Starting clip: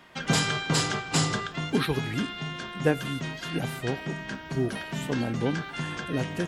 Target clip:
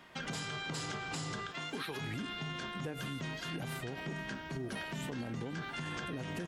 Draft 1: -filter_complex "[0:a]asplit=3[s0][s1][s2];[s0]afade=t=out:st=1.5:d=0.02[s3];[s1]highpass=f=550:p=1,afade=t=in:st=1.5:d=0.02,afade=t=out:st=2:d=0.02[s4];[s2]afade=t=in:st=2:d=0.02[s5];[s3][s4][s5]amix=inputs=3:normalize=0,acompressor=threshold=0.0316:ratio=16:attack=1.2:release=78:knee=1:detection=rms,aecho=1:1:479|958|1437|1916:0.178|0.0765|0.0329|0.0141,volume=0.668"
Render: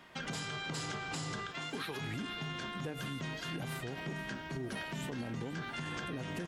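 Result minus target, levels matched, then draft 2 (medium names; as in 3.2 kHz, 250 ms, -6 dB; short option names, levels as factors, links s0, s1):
echo-to-direct +7 dB
-filter_complex "[0:a]asplit=3[s0][s1][s2];[s0]afade=t=out:st=1.5:d=0.02[s3];[s1]highpass=f=550:p=1,afade=t=in:st=1.5:d=0.02,afade=t=out:st=2:d=0.02[s4];[s2]afade=t=in:st=2:d=0.02[s5];[s3][s4][s5]amix=inputs=3:normalize=0,acompressor=threshold=0.0316:ratio=16:attack=1.2:release=78:knee=1:detection=rms,aecho=1:1:479|958|1437:0.0794|0.0342|0.0147,volume=0.668"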